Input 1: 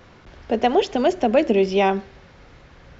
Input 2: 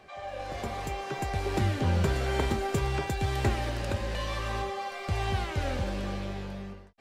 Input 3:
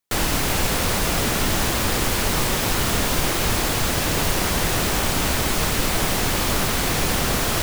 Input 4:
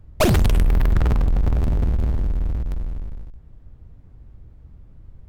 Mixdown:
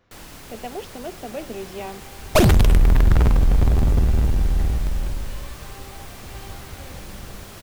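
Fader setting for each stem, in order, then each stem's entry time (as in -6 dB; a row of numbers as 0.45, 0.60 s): -15.5, -11.0, -19.5, +2.5 dB; 0.00, 1.15, 0.00, 2.15 s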